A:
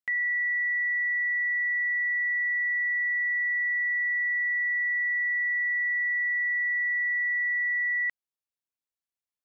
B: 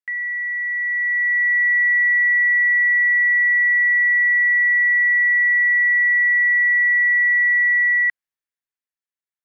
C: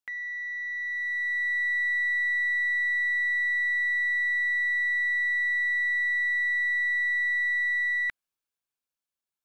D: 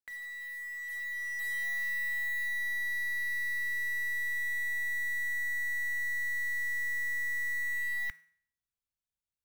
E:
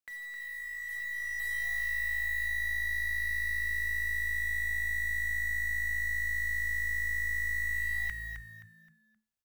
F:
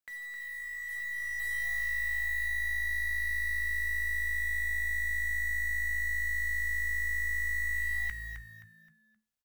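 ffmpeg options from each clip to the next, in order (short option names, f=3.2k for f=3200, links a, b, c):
-af "equalizer=f=1.8k:t=o:w=0.84:g=10.5,dynaudnorm=f=110:g=21:m=9dB,volume=-7.5dB"
-filter_complex "[0:a]equalizer=f=1.9k:t=o:w=0.2:g=-13.5,asplit=2[a][b];[b]aeval=exprs='clip(val(0),-1,0.0106)':c=same,volume=-11.5dB[c];[a][c]amix=inputs=2:normalize=0"
-af "asubboost=boost=8.5:cutoff=130,bandreject=f=161.6:t=h:w=4,bandreject=f=323.2:t=h:w=4,bandreject=f=484.8:t=h:w=4,bandreject=f=646.4:t=h:w=4,bandreject=f=808:t=h:w=4,bandreject=f=969.6:t=h:w=4,bandreject=f=1.1312k:t=h:w=4,bandreject=f=1.2928k:t=h:w=4,bandreject=f=1.4544k:t=h:w=4,bandreject=f=1.616k:t=h:w=4,bandreject=f=1.7776k:t=h:w=4,bandreject=f=1.9392k:t=h:w=4,bandreject=f=2.1008k:t=h:w=4,bandreject=f=2.2624k:t=h:w=4,bandreject=f=2.424k:t=h:w=4,bandreject=f=2.5856k:t=h:w=4,bandreject=f=2.7472k:t=h:w=4,bandreject=f=2.9088k:t=h:w=4,bandreject=f=3.0704k:t=h:w=4,bandreject=f=3.232k:t=h:w=4,bandreject=f=3.3936k:t=h:w=4,bandreject=f=3.5552k:t=h:w=4,bandreject=f=3.7168k:t=h:w=4,bandreject=f=3.8784k:t=h:w=4,bandreject=f=4.04k:t=h:w=4,bandreject=f=4.2016k:t=h:w=4,bandreject=f=4.3632k:t=h:w=4,bandreject=f=4.5248k:t=h:w=4,bandreject=f=4.6864k:t=h:w=4,bandreject=f=4.848k:t=h:w=4,bandreject=f=5.0096k:t=h:w=4,bandreject=f=5.1712k:t=h:w=4,bandreject=f=5.3328k:t=h:w=4,bandreject=f=5.4944k:t=h:w=4,bandreject=f=5.656k:t=h:w=4,bandreject=f=5.8176k:t=h:w=4,bandreject=f=5.9792k:t=h:w=4,bandreject=f=6.1408k:t=h:w=4,bandreject=f=6.3024k:t=h:w=4,acrusher=bits=3:mode=log:mix=0:aa=0.000001,volume=-7.5dB"
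-filter_complex "[0:a]asplit=5[a][b][c][d][e];[b]adelay=262,afreqshift=-55,volume=-7dB[f];[c]adelay=524,afreqshift=-110,volume=-16.9dB[g];[d]adelay=786,afreqshift=-165,volume=-26.8dB[h];[e]adelay=1048,afreqshift=-220,volume=-36.7dB[i];[a][f][g][h][i]amix=inputs=5:normalize=0"
-filter_complex "[0:a]asplit=2[a][b];[b]adelay=15,volume=-13.5dB[c];[a][c]amix=inputs=2:normalize=0"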